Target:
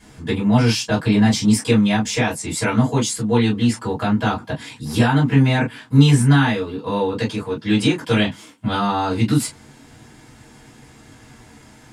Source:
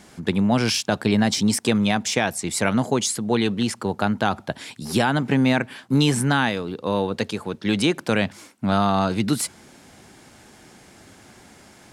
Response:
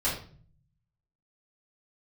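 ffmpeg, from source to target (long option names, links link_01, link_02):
-filter_complex "[0:a]asettb=1/sr,asplit=3[link_01][link_02][link_03];[link_01]atrim=end=8.004[link_04];[link_02]atrim=start=8:end=8.77,asetpts=PTS-STARTPTS,afade=type=in:duration=0.004:curve=qsin,afade=type=out:start_time=0.766:duration=0.004:curve=qsin,equalizer=frequency=3200:width=6.2:gain=10.5[link_05];[link_03]atrim=start=8.766[link_06];[link_04][link_05]acrossfade=duration=0.004:curve1=hsin:curve2=qsin[link_07];[link_07][link_06]acrossfade=duration=0.004:curve1=qsin:curve2=hsin[link_08];[1:a]atrim=start_sample=2205,afade=type=out:start_time=0.14:duration=0.01,atrim=end_sample=6615,asetrate=74970,aresample=44100[link_09];[link_08][link_09]afir=irnorm=-1:irlink=0,volume=-3dB"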